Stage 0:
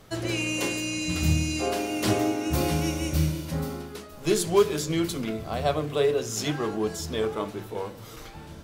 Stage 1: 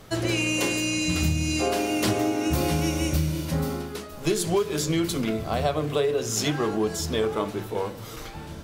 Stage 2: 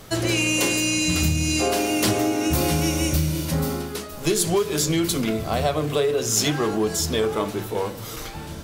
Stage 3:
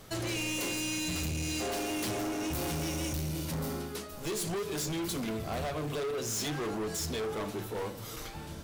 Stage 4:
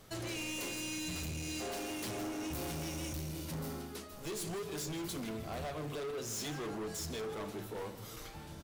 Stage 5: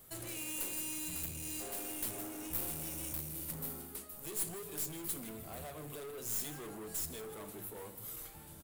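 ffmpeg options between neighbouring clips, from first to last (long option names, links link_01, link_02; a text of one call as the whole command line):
ffmpeg -i in.wav -af "acompressor=threshold=-24dB:ratio=12,volume=4.5dB" out.wav
ffmpeg -i in.wav -filter_complex "[0:a]asplit=2[link_01][link_02];[link_02]asoftclip=type=tanh:threshold=-23dB,volume=-6.5dB[link_03];[link_01][link_03]amix=inputs=2:normalize=0,highshelf=frequency=4900:gain=6" out.wav
ffmpeg -i in.wav -af "asoftclip=type=hard:threshold=-23.5dB,volume=-8dB" out.wav
ffmpeg -i in.wav -filter_complex "[0:a]asplit=2[link_01][link_02];[link_02]adelay=157.4,volume=-13dB,highshelf=frequency=4000:gain=-3.54[link_03];[link_01][link_03]amix=inputs=2:normalize=0,volume=-6dB" out.wav
ffmpeg -i in.wav -af "aexciter=amount=5.9:drive=4.8:freq=7900,aeval=exprs='(tanh(11.2*val(0)+0.7)-tanh(0.7))/11.2':channel_layout=same,volume=-2.5dB" out.wav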